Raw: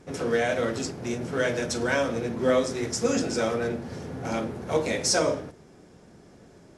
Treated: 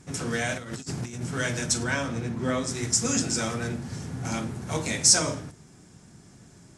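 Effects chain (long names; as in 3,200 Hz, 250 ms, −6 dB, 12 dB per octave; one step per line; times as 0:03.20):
graphic EQ with 10 bands 125 Hz +6 dB, 500 Hz −10 dB, 8,000 Hz +11 dB
0:00.57–0:01.22: compressor whose output falls as the input rises −34 dBFS, ratio −0.5
0:01.83–0:02.67: high-shelf EQ 5,900 Hz → 3,500 Hz −10 dB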